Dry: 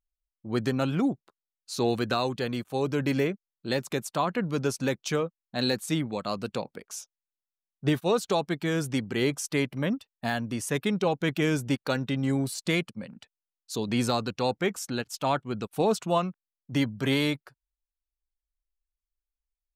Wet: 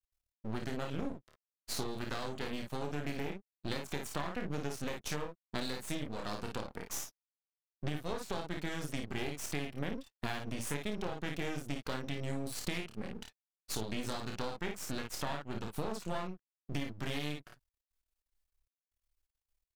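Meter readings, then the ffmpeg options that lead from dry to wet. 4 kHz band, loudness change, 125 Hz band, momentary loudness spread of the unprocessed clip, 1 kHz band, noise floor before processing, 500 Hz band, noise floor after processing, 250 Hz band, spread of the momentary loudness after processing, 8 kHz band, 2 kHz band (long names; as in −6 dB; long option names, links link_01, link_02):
−9.0 dB, −11.0 dB, −10.0 dB, 8 LU, −10.5 dB, below −85 dBFS, −12.5 dB, below −85 dBFS, −12.0 dB, 5 LU, −6.5 dB, −9.0 dB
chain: -af "aecho=1:1:28|54:0.562|0.531,acompressor=threshold=-36dB:ratio=8,aeval=exprs='max(val(0),0)':channel_layout=same,volume=4.5dB"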